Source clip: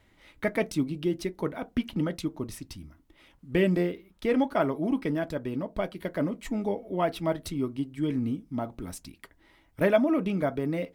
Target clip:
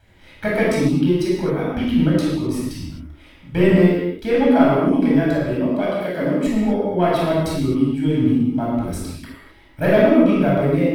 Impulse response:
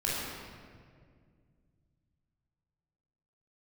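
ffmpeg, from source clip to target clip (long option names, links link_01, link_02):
-filter_complex "[0:a]asettb=1/sr,asplit=3[link_01][link_02][link_03];[link_01]atrim=end=5.494[link_04];[link_02]atrim=start=5.49:end=6.45,asetpts=PTS-STARTPTS,afade=type=in:duration=0.004:curve=qsin,afade=type=out:start_time=0.956:duration=0.004:curve=qsin,highpass=180[link_05];[link_03]atrim=start=6.446[link_06];[link_04][link_05]acrossfade=duration=0.004:curve1=hsin:curve2=qsin[link_07];[link_07][link_06]acrossfade=duration=0.004:curve1=qsin:curve2=hsin,asoftclip=type=tanh:threshold=-14.5dB[link_08];[1:a]atrim=start_sample=2205,afade=type=out:start_time=0.32:duration=0.01,atrim=end_sample=14553[link_09];[link_08][link_09]afir=irnorm=-1:irlink=0,volume=3dB"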